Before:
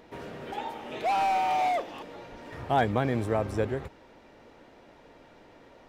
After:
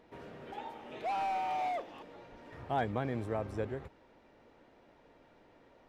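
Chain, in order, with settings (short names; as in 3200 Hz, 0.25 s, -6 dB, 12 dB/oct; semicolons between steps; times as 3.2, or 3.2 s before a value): high shelf 4700 Hz -6.5 dB; gain -8 dB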